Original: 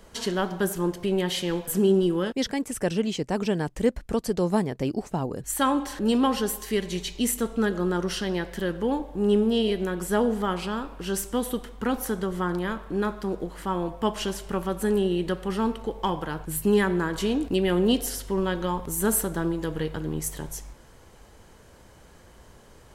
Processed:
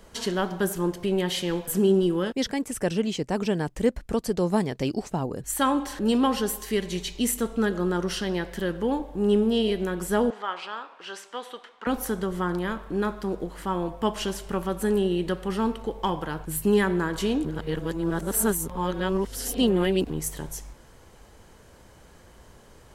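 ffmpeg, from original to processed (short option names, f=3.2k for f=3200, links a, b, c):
-filter_complex "[0:a]asettb=1/sr,asplit=3[a][b][c];[a]atrim=end=4.604[d];[b]atrim=start=4.6:end=5.1,asetpts=PTS-STARTPTS,afade=t=in:d=0.004:c=qsin,afade=t=out:st=0.496:d=0.004:c=qsin,equalizer=f=4.3k:w=0.61:g=6.5[e];[c]atrim=start=5.096[f];[d][e]acrossfade=d=0.004:c1=hsin:c2=qsin[g];[g][f]acrossfade=d=0.004:c1=qsin:c2=hsin,asettb=1/sr,asplit=3[h][i][j];[h]atrim=end=10.304[k];[i]atrim=start=10.3:end=11.87,asetpts=PTS-STARTPTS,afade=t=in:d=0.004:c=qsin,afade=t=out:st=1.566:d=0.004:c=qsin,highpass=780,lowpass=4k[l];[j]atrim=start=11.866[m];[k][l]acrossfade=d=0.004:c1=hsin:c2=qsin[n];[n][m]acrossfade=d=0.004:c1=qsin:c2=hsin,asplit=3[o][p][q];[o]atrim=end=17.452[r];[p]atrim=start=17.448:end=20.102,asetpts=PTS-STARTPTS,areverse[s];[q]atrim=start=20.098[t];[r][s]acrossfade=d=0.004:c1=hsin:c2=hsin[u];[u][t]acrossfade=d=0.004:c1=hsin:c2=hsin"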